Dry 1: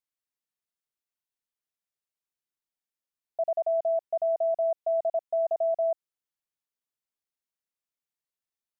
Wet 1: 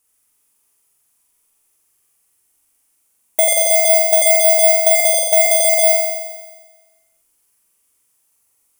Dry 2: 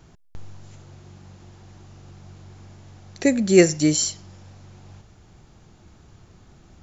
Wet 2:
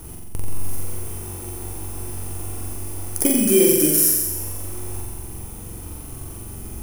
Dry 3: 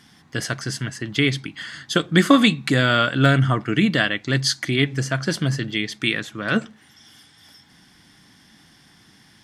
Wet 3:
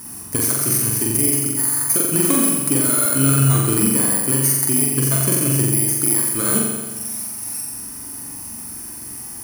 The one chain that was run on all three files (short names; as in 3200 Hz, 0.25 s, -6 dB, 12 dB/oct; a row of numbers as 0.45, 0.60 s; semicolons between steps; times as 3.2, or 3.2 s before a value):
FFT order left unsorted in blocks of 16 samples; fifteen-band EQ 160 Hz -10 dB, 630 Hz -7 dB, 1600 Hz -6 dB, 4000 Hz -10 dB, 10000 Hz +10 dB; limiter -9 dBFS; compressor 3:1, threshold -35 dBFS; flutter echo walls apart 7.6 m, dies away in 1.3 s; normalise peaks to -2 dBFS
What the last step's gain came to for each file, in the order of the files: +22.0, +13.5, +13.5 dB